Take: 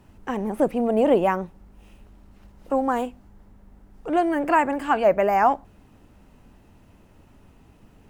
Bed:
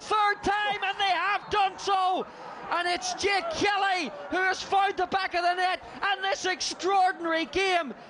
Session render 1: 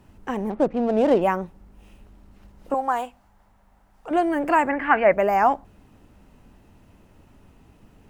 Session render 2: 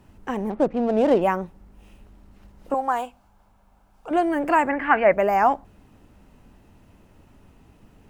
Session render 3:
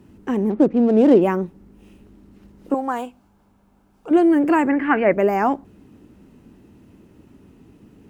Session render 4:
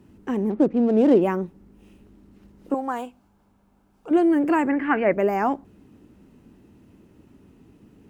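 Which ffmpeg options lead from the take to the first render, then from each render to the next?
-filter_complex "[0:a]asettb=1/sr,asplit=3[a][b][c];[a]atrim=end=0.504[d];[b]atrim=start=0.5:end=1.22,asetpts=PTS-STARTPTS,afade=t=in:d=0.004:c=qsin,afade=t=out:st=0.716:d=0.004:c=qsin,adynamicsmooth=sensitivity=5:basefreq=890[e];[c]atrim=start=1.216[f];[d][e]acrossfade=d=0.004:c1=hsin:c2=qsin[g];[g][f]acrossfade=d=0.004:c1=qsin:c2=hsin,asettb=1/sr,asplit=3[h][i][j];[h]atrim=end=2.744[k];[i]atrim=start=2.74:end=4.11,asetpts=PTS-STARTPTS,afade=t=in:d=0.004:c=qsin,afade=t=out:st=1.366:d=0.004:c=qsin,lowshelf=f=530:t=q:w=1.5:g=-9.5[l];[j]atrim=start=4.106[m];[k][l]acrossfade=d=0.004:c1=hsin:c2=qsin[n];[n][m]acrossfade=d=0.004:c1=qsin:c2=hsin,asettb=1/sr,asplit=3[o][p][q];[o]atrim=end=4.694[r];[p]atrim=start=4.69:end=5.13,asetpts=PTS-STARTPTS,afade=t=in:d=0.004:c=qsin,afade=t=out:st=0.436:d=0.004:c=qsin,lowpass=f=2k:t=q:w=5[s];[q]atrim=start=5.126[t];[r][s]acrossfade=d=0.004:c1=hsin:c2=qsin[u];[u][t]acrossfade=d=0.004:c1=qsin:c2=hsin"
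-filter_complex "[0:a]asettb=1/sr,asplit=3[a][b][c];[a]atrim=end=3.014[d];[b]atrim=start=3.01:end=4.12,asetpts=PTS-STARTPTS,afade=t=in:d=0.004:c=qsin,afade=t=out:st=1.106:d=0.004:c=qsin,bandreject=f=1.9k:w=5.5[e];[c]atrim=start=4.116[f];[d][e]acrossfade=d=0.004:c1=hsin:c2=qsin[g];[g][f]acrossfade=d=0.004:c1=qsin:c2=hsin"
-af "highpass=f=210:p=1,lowshelf=f=480:t=q:w=1.5:g=9"
-af "volume=-3.5dB"

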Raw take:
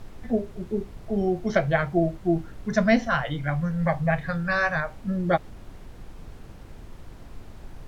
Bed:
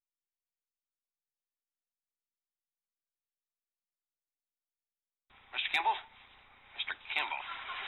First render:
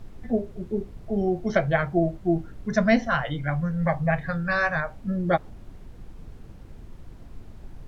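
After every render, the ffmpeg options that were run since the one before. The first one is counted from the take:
-af "afftdn=nr=6:nf=-44"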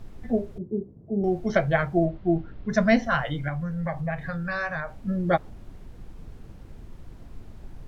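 -filter_complex "[0:a]asettb=1/sr,asplit=3[a][b][c];[a]atrim=end=0.584[d];[b]atrim=start=0.58:end=1.24,asetpts=PTS-STARTPTS,afade=t=in:d=0.004:c=qsin,afade=t=out:st=0.656:d=0.004:c=qsin,asuperpass=centerf=220:order=4:qfactor=0.62[e];[c]atrim=start=1.236[f];[d][e]acrossfade=d=0.004:c1=hsin:c2=qsin[g];[g][f]acrossfade=d=0.004:c1=qsin:c2=hsin,asettb=1/sr,asplit=3[h][i][j];[h]atrim=end=2.054[k];[i]atrim=start=2.05:end=2.72,asetpts=PTS-STARTPTS,afade=t=in:d=0.004:c=qsin,afade=t=out:st=0.666:d=0.004:c=qsin,lowpass=f=4.1k:w=0.5412,lowpass=f=4.1k:w=1.3066[l];[j]atrim=start=2.716[m];[k][l]acrossfade=d=0.004:c1=hsin:c2=qsin[n];[n][m]acrossfade=d=0.004:c1=qsin:c2=hsin,asettb=1/sr,asplit=3[o][p][q];[o]atrim=end=3.484[r];[p]atrim=start=3.48:end=5.02,asetpts=PTS-STARTPTS,afade=t=in:d=0.004:c=qsin,afade=t=out:st=1.536:d=0.004:c=qsin,acompressor=threshold=-29dB:ratio=2:attack=3.2:release=140:knee=1:detection=peak[s];[q]atrim=start=5.016[t];[r][s]acrossfade=d=0.004:c1=hsin:c2=qsin[u];[u][t]acrossfade=d=0.004:c1=qsin:c2=hsin"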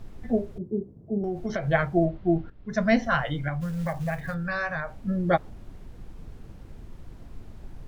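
-filter_complex "[0:a]asplit=3[a][b][c];[a]afade=t=out:st=1.17:d=0.02[d];[b]acompressor=threshold=-25dB:ratio=5:attack=3.2:release=140:knee=1:detection=peak,afade=t=in:st=1.17:d=0.02,afade=t=out:st=1.66:d=0.02[e];[c]afade=t=in:st=1.66:d=0.02[f];[d][e][f]amix=inputs=3:normalize=0,asplit=3[g][h][i];[g]afade=t=out:st=3.6:d=0.02[j];[h]acrusher=bits=6:mode=log:mix=0:aa=0.000001,afade=t=in:st=3.6:d=0.02,afade=t=out:st=4.33:d=0.02[k];[i]afade=t=in:st=4.33:d=0.02[l];[j][k][l]amix=inputs=3:normalize=0,asplit=2[m][n];[m]atrim=end=2.5,asetpts=PTS-STARTPTS,afade=t=out:st=2.496:d=0.004:c=hsin:silence=0.211349[o];[n]atrim=start=2.5,asetpts=PTS-STARTPTS,afade=t=in:d=0.54:silence=0.211349[p];[o][p]concat=n=2:v=0:a=1"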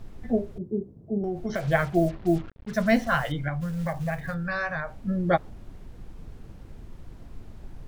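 -filter_complex "[0:a]asettb=1/sr,asplit=3[a][b][c];[a]atrim=end=1.554[d];[b]atrim=start=1.55:end=3.32,asetpts=PTS-STARTPTS,afade=t=in:d=0.004:c=qsin,afade=t=out:st=1.766:d=0.004:c=qsin,acrusher=bits=6:mix=0:aa=0.5[e];[c]atrim=start=3.316[f];[d][e]acrossfade=d=0.004:c1=hsin:c2=qsin[g];[g][f]acrossfade=d=0.004:c1=qsin:c2=hsin"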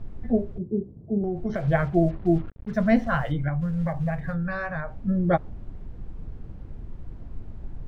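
-af "lowpass=f=1.6k:p=1,lowshelf=f=210:g=6"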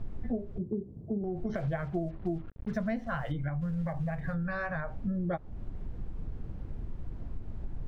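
-af "acompressor=threshold=-30dB:ratio=6"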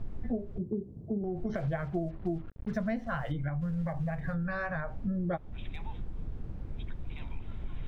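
-filter_complex "[1:a]volume=-19.5dB[a];[0:a][a]amix=inputs=2:normalize=0"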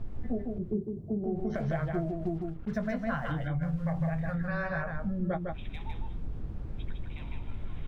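-filter_complex "[0:a]asplit=2[a][b];[b]adelay=19,volume=-13dB[c];[a][c]amix=inputs=2:normalize=0,aecho=1:1:155:0.631"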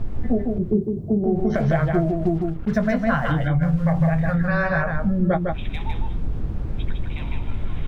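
-af "volume=11.5dB"

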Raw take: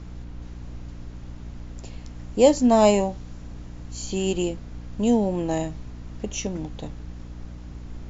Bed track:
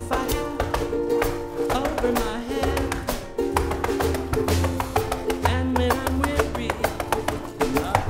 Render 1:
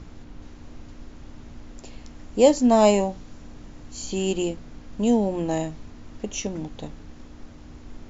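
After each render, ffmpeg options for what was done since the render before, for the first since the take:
-af "bandreject=f=60:t=h:w=6,bandreject=f=120:t=h:w=6,bandreject=f=180:t=h:w=6"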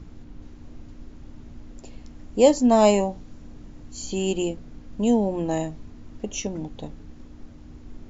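-af "afftdn=nr=6:nf=-45"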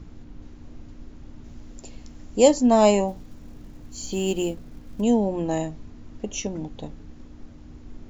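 -filter_complex "[0:a]asettb=1/sr,asplit=3[a][b][c];[a]atrim=end=1.444[d];[b]atrim=start=1.44:end=2.48,asetpts=PTS-STARTPTS,afade=t=in:d=0.004:c=qsin,afade=t=out:st=1.036:d=0.004:c=qsin,highshelf=f=5.9k:g=10[e];[c]atrim=start=2.476[f];[d][e]acrossfade=d=0.004:c1=hsin:c2=qsin[g];[g][f]acrossfade=d=0.004:c1=qsin:c2=hsin,asplit=3[h][i][j];[h]afade=t=out:st=3.07:d=0.02[k];[i]acrusher=bits=7:mode=log:mix=0:aa=0.000001,afade=t=in:st=3.07:d=0.02,afade=t=out:st=5:d=0.02[l];[j]afade=t=in:st=5:d=0.02[m];[k][l][m]amix=inputs=3:normalize=0"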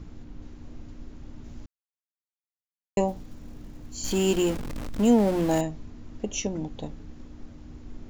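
-filter_complex "[0:a]asettb=1/sr,asplit=3[a][b][c];[a]atrim=end=4.044[d];[b]atrim=start=4.04:end=5.61,asetpts=PTS-STARTPTS,afade=t=in:d=0.004:c=qsin,afade=t=out:st=1.566:d=0.004:c=qsin,aeval=exprs='val(0)+0.5*0.0316*sgn(val(0))':c=same[e];[c]atrim=start=5.606[f];[d][e]acrossfade=d=0.004:c1=hsin:c2=qsin[g];[g][f]acrossfade=d=0.004:c1=qsin:c2=hsin,asplit=3[h][i][j];[h]atrim=end=1.66,asetpts=PTS-STARTPTS,afade=t=out:st=1.656:d=0.004:c=hsin[k];[i]atrim=start=1.66:end=2.97,asetpts=PTS-STARTPTS,volume=0[l];[j]atrim=start=2.97,asetpts=PTS-STARTPTS,afade=t=in:d=0.004:c=hsin[m];[k][l][m]concat=n=3:v=0:a=1"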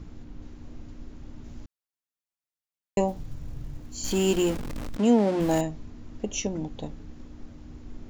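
-filter_complex "[0:a]asettb=1/sr,asplit=3[a][b][c];[a]atrim=end=3.194[d];[b]atrim=start=3.19:end=3.79,asetpts=PTS-STARTPTS,afade=t=in:d=0.004:c=qsin,afade=t=out:st=0.596:d=0.004:c=qsin,lowshelf=f=170:t=q:w=3:g=6[e];[c]atrim=start=3.786[f];[d][e]acrossfade=d=0.004:c1=hsin:c2=qsin[g];[g][f]acrossfade=d=0.004:c1=qsin:c2=hsin,asplit=3[h][i][j];[h]afade=t=out:st=4.96:d=0.02[k];[i]highpass=160,lowpass=6.3k,afade=t=in:st=4.96:d=0.02,afade=t=out:st=5.39:d=0.02[l];[j]afade=t=in:st=5.39:d=0.02[m];[k][l][m]amix=inputs=3:normalize=0"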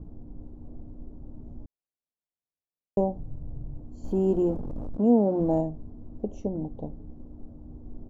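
-af "firequalizer=gain_entry='entry(690,0);entry(1200,-14);entry(1900,-29)':delay=0.05:min_phase=1"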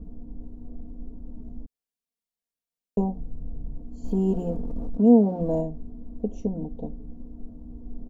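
-af "equalizer=f=1.2k:t=o:w=1.9:g=-5,aecho=1:1:4.3:0.88"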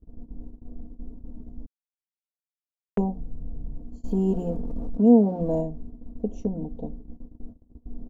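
-af "agate=range=-29dB:threshold=-36dB:ratio=16:detection=peak"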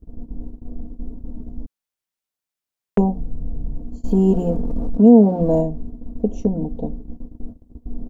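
-af "volume=8dB,alimiter=limit=-1dB:level=0:latency=1"

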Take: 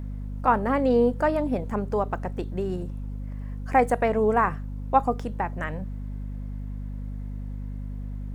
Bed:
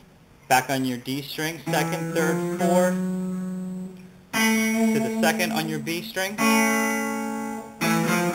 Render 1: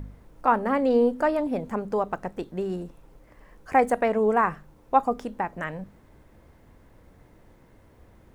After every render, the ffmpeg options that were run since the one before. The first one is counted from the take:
-af "bandreject=f=50:t=h:w=4,bandreject=f=100:t=h:w=4,bandreject=f=150:t=h:w=4,bandreject=f=200:t=h:w=4,bandreject=f=250:t=h:w=4"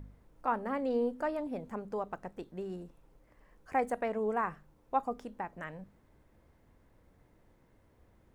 -af "volume=-10.5dB"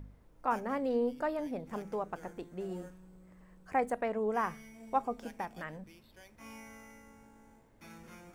-filter_complex "[1:a]volume=-30.5dB[a];[0:a][a]amix=inputs=2:normalize=0"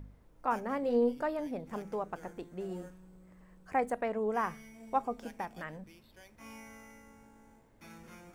-filter_complex "[0:a]asettb=1/sr,asplit=3[a][b][c];[a]atrim=end=0.814[d];[b]atrim=start=0.81:end=1.23,asetpts=PTS-STARTPTS,afade=t=in:d=0.004:c=qsin,afade=t=out:st=0.416:d=0.004:c=qsin,asplit=2[e][f];[f]adelay=21,volume=-5.5dB[g];[e][g]amix=inputs=2:normalize=0,atrim=end_sample=18522[h];[c]atrim=start=1.226[i];[d][h]acrossfade=d=0.004:c1=hsin:c2=qsin[j];[j][i]acrossfade=d=0.004:c1=qsin:c2=hsin"

